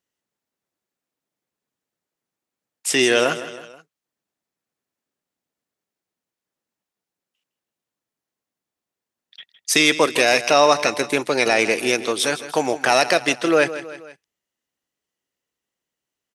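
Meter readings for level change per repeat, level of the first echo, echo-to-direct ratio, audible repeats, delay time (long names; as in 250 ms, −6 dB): −5.5 dB, −14.0 dB, −12.5 dB, 3, 160 ms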